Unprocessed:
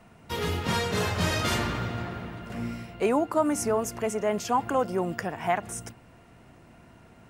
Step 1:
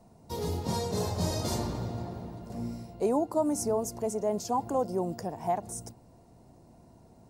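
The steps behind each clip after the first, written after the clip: band shelf 2000 Hz -15.5 dB; gain -2.5 dB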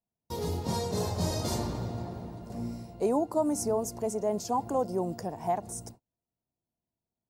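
gate -48 dBFS, range -36 dB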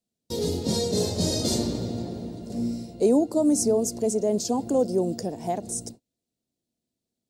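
ten-band EQ 250 Hz +9 dB, 500 Hz +7 dB, 1000 Hz -9 dB, 4000 Hz +9 dB, 8000 Hz +8 dB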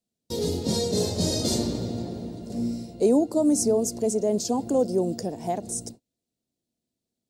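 nothing audible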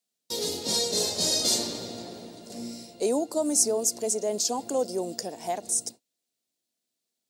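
HPF 1400 Hz 6 dB/oct; gain +5.5 dB

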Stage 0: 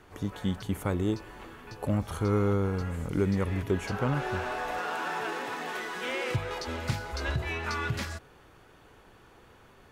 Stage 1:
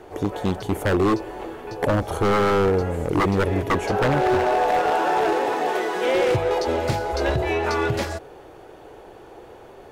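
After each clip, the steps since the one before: band shelf 520 Hz +11 dB; wavefolder -19 dBFS; gain +5.5 dB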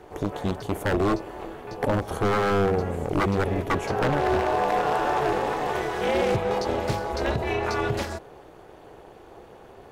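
AM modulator 300 Hz, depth 65%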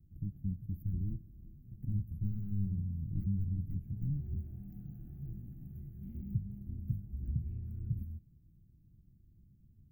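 inverse Chebyshev band-stop 450–9300 Hz, stop band 50 dB; gain -4.5 dB

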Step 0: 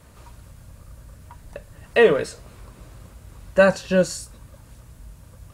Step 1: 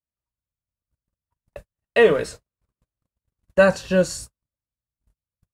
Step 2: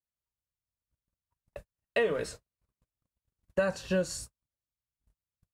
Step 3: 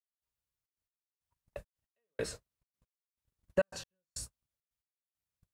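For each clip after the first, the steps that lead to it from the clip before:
gate -36 dBFS, range -49 dB
compressor 6:1, threshold -19 dBFS, peak gain reduction 9.5 dB; gain -5.5 dB
step gate "..xxxx.x." 137 bpm -60 dB

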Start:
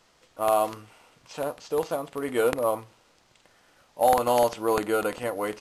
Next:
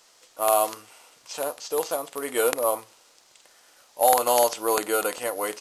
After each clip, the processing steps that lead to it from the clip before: tone controls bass -15 dB, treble +10 dB; gain +1.5 dB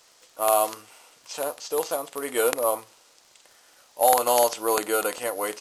crackle 25/s -42 dBFS

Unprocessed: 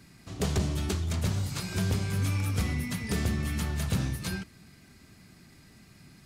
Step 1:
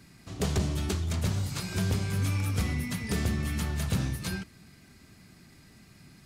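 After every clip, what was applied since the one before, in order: nothing audible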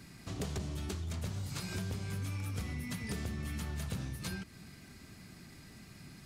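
compressor 5:1, threshold -38 dBFS, peak gain reduction 13.5 dB; gain +1.5 dB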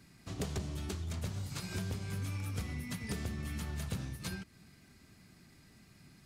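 upward expander 1.5:1, over -51 dBFS; gain +1.5 dB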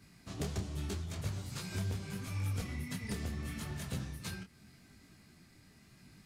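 detuned doubles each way 28 cents; gain +3.5 dB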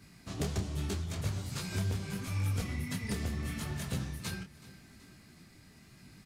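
feedback echo 0.376 s, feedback 54%, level -19.5 dB; gain +3.5 dB

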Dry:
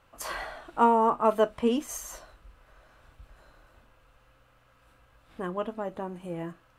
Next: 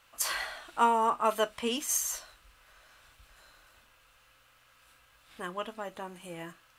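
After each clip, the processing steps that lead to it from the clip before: tilt shelf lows -9.5 dB, about 1300 Hz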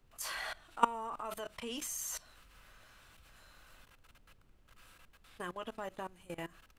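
level quantiser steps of 21 dB; added noise brown -65 dBFS; gain +1.5 dB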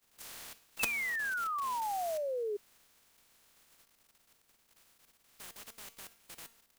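spectral contrast lowered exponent 0.13; resonator 230 Hz, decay 0.49 s, harmonics all, mix 60%; painted sound fall, 0.79–2.57, 400–2700 Hz -35 dBFS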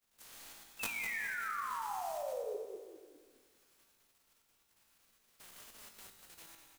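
reverse delay 0.106 s, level -1.5 dB; resonator 55 Hz, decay 1.7 s, harmonics all, mix 80%; frequency-shifting echo 0.203 s, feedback 34%, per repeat -43 Hz, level -9.5 dB; gain +3.5 dB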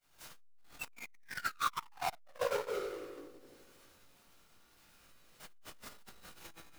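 half-waves squared off; shoebox room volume 800 m³, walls furnished, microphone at 7.5 m; core saturation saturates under 720 Hz; gain -5 dB

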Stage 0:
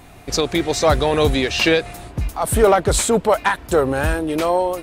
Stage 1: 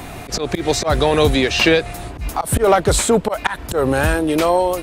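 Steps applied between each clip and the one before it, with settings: auto swell 0.133 s; three-band squash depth 40%; gain +2.5 dB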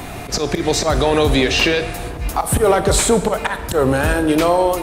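limiter -8 dBFS, peak gain reduction 6.5 dB; on a send at -9.5 dB: reverb RT60 1.5 s, pre-delay 18 ms; on the sum: gain +2 dB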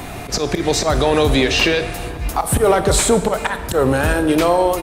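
echo 0.409 s -24 dB

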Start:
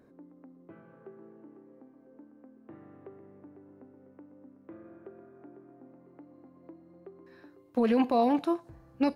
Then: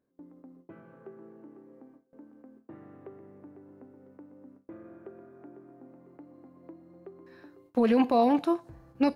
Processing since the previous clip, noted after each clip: gate with hold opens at -48 dBFS; gain +2 dB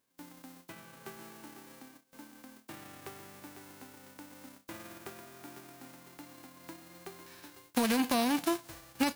spectral whitening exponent 0.3; compressor 6:1, threshold -25 dBFS, peak gain reduction 7.5 dB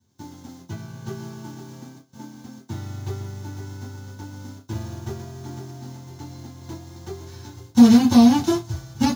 reverb, pre-delay 3 ms, DRR -9.5 dB; gain -5 dB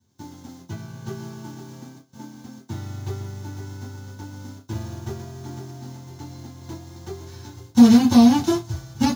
nothing audible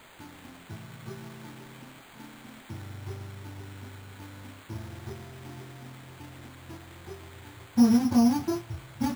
switching spikes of -18.5 dBFS; requantised 6-bit, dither triangular; careless resampling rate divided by 8×, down filtered, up hold; gain -8.5 dB

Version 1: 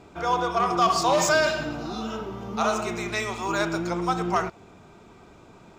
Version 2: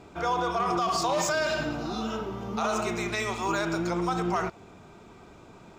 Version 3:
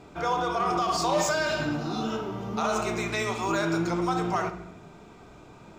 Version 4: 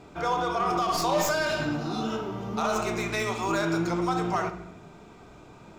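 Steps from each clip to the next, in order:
limiter -18 dBFS, peak gain reduction 9 dB
reverb RT60 0.80 s, pre-delay 7 ms, DRR 7 dB
tracing distortion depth 0.046 ms

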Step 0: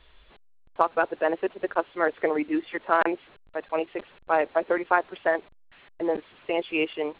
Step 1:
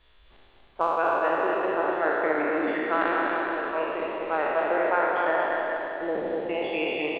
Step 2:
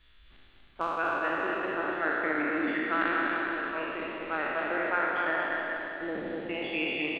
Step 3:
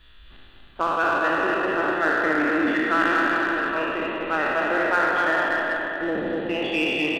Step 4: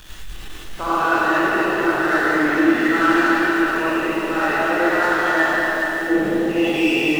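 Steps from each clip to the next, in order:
spectral trails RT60 2.36 s; on a send: bouncing-ball echo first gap 0.24 s, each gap 0.8×, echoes 5; on the sum: gain -6.5 dB
band shelf 640 Hz -9 dB
notch 2200 Hz, Q 7; in parallel at -5.5 dB: hard clip -31 dBFS, distortion -8 dB; on the sum: gain +5.5 dB
zero-crossing step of -33.5 dBFS; non-linear reverb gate 0.13 s rising, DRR -7 dB; gain -5 dB

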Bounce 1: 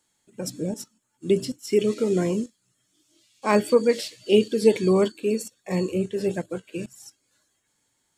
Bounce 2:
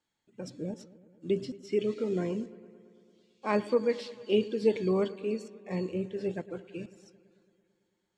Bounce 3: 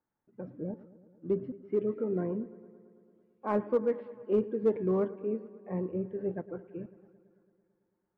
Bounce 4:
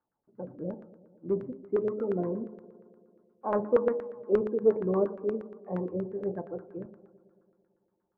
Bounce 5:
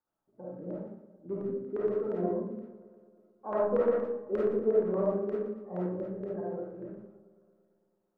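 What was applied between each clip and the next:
LPF 4200 Hz 12 dB/oct; analogue delay 0.111 s, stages 2048, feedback 73%, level -18.5 dB; gain -8 dB
LPF 1500 Hz 24 dB/oct; in parallel at -7 dB: overloaded stage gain 22 dB; on the sum: gain -4 dB
de-hum 53.15 Hz, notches 31; LFO low-pass saw down 8.5 Hz 490–1500 Hz
reverb RT60 0.60 s, pre-delay 10 ms, DRR -6 dB; gain -8 dB

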